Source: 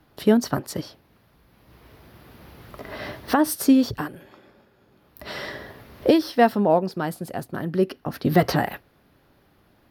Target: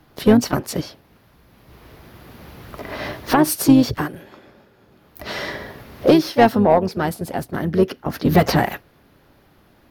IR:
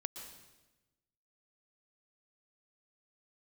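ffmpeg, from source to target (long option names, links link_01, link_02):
-filter_complex "[0:a]acontrast=81,asplit=3[link_01][link_02][link_03];[link_02]asetrate=22050,aresample=44100,atempo=2,volume=-13dB[link_04];[link_03]asetrate=52444,aresample=44100,atempo=0.840896,volume=-11dB[link_05];[link_01][link_04][link_05]amix=inputs=3:normalize=0,volume=-2dB"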